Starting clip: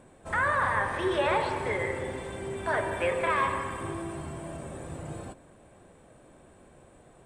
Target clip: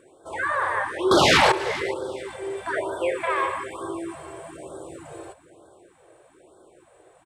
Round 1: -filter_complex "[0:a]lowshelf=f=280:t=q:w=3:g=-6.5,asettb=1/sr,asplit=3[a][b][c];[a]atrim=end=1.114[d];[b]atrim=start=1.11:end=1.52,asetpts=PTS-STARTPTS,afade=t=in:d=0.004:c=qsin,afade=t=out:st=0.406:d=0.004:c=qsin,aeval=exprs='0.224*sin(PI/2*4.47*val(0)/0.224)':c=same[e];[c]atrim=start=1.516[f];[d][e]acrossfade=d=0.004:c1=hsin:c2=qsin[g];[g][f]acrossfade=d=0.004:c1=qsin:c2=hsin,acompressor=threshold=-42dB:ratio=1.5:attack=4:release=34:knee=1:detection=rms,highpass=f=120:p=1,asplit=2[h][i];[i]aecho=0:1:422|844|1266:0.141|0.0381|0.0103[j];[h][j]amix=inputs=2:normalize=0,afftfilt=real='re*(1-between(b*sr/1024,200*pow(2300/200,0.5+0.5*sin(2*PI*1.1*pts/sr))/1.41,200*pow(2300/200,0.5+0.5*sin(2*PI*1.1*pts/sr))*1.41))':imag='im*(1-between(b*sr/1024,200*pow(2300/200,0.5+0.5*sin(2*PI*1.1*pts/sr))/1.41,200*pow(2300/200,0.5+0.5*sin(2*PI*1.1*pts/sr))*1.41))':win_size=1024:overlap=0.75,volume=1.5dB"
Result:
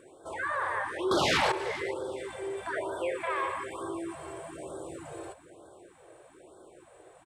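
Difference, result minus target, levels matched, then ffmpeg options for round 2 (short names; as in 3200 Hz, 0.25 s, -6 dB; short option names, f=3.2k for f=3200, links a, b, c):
compressor: peak gain reduction +9.5 dB
-filter_complex "[0:a]lowshelf=f=280:t=q:w=3:g=-6.5,asettb=1/sr,asplit=3[a][b][c];[a]atrim=end=1.114[d];[b]atrim=start=1.11:end=1.52,asetpts=PTS-STARTPTS,afade=t=in:d=0.004:c=qsin,afade=t=out:st=0.406:d=0.004:c=qsin,aeval=exprs='0.224*sin(PI/2*4.47*val(0)/0.224)':c=same[e];[c]atrim=start=1.516[f];[d][e]acrossfade=d=0.004:c1=hsin:c2=qsin[g];[g][f]acrossfade=d=0.004:c1=qsin:c2=hsin,highpass=f=120:p=1,asplit=2[h][i];[i]aecho=0:1:422|844|1266:0.141|0.0381|0.0103[j];[h][j]amix=inputs=2:normalize=0,afftfilt=real='re*(1-between(b*sr/1024,200*pow(2300/200,0.5+0.5*sin(2*PI*1.1*pts/sr))/1.41,200*pow(2300/200,0.5+0.5*sin(2*PI*1.1*pts/sr))*1.41))':imag='im*(1-between(b*sr/1024,200*pow(2300/200,0.5+0.5*sin(2*PI*1.1*pts/sr))/1.41,200*pow(2300/200,0.5+0.5*sin(2*PI*1.1*pts/sr))*1.41))':win_size=1024:overlap=0.75,volume=1.5dB"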